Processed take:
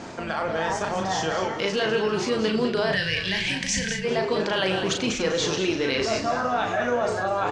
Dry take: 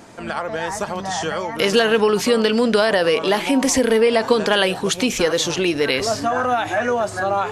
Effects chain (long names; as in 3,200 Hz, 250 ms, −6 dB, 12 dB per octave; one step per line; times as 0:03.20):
low-pass filter 6,800 Hz 24 dB per octave
echo with shifted repeats 199 ms, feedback 31%, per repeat −61 Hz, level −9 dB
on a send at −14.5 dB: convolution reverb RT60 0.55 s, pre-delay 85 ms
on the sum: gain on a spectral selection 0:02.93–0:04.05, 200–1,500 Hz −18 dB
reversed playback
downward compressor 4 to 1, threshold −30 dBFS, peak gain reduction 16.5 dB
reversed playback
double-tracking delay 37 ms −5 dB
level +5 dB